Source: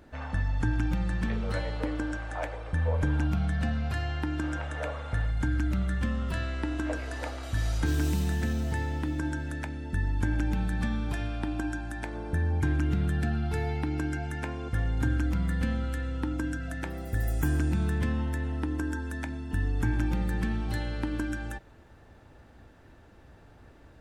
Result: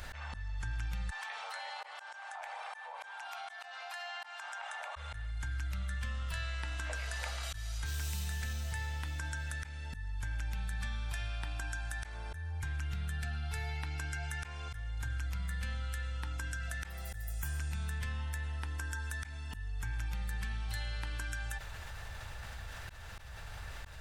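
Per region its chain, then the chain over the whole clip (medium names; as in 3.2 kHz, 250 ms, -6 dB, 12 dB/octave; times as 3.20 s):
1.10–4.96 s: ladder high-pass 720 Hz, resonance 65% + compression 4:1, threshold -46 dBFS
whole clip: amplifier tone stack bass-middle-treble 10-0-10; slow attack 435 ms; level flattener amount 70%; trim -1.5 dB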